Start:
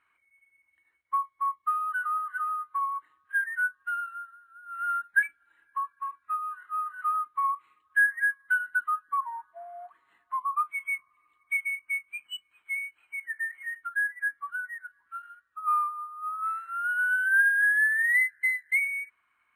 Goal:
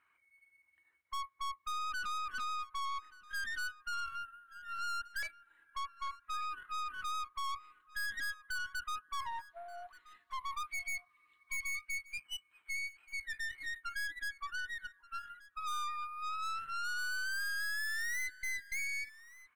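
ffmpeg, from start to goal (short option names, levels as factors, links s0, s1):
-filter_complex "[0:a]asettb=1/sr,asplit=3[s0][s1][s2];[s0]atrim=end=9.394[s3];[s1]atrim=start=9.39:end=11.95,asetpts=PTS-STARTPTS,afade=t=in:d=0.004:c=qsin,afade=t=out:st=2.556:d=0.004:c=qsin,equalizer=f=1000:t=o:w=1:g=-6,equalizer=f=2000:t=o:w=1:g=3,equalizer=f=4000:t=o:w=1:g=10[s4];[s2]atrim=start=11.946[s5];[s3][s4]acrossfade=d=0.004:c1=hsin:c2=qsin[s6];[s6][s5]acrossfade=d=0.004:c1=qsin:c2=hsin,aeval=exprs='(tanh(79.4*val(0)+0.65)-tanh(0.65))/79.4':c=same,aecho=1:1:1179:0.1,volume=1.12"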